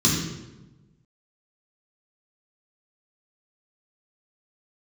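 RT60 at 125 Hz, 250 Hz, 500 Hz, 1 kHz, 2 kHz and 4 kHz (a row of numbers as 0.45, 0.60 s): 1.5, 1.4, 1.2, 0.95, 0.85, 0.75 s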